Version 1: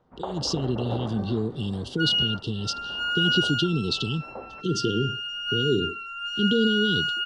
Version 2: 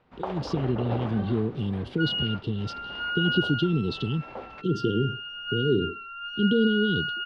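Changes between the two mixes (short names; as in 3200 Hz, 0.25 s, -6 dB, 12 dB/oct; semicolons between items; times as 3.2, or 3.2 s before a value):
speech: remove Chebyshev low-pass 4500 Hz, order 2; first sound: remove Bessel low-pass 1000 Hz, order 4; master: add air absorption 350 m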